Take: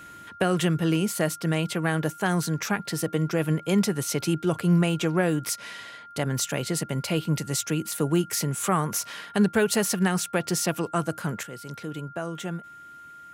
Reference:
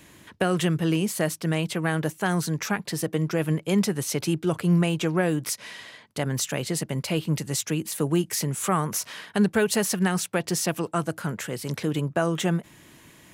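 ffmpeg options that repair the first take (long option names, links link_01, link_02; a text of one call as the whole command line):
ffmpeg -i in.wav -af "bandreject=frequency=1400:width=30,asetnsamples=nb_out_samples=441:pad=0,asendcmd='11.43 volume volume 8.5dB',volume=0dB" out.wav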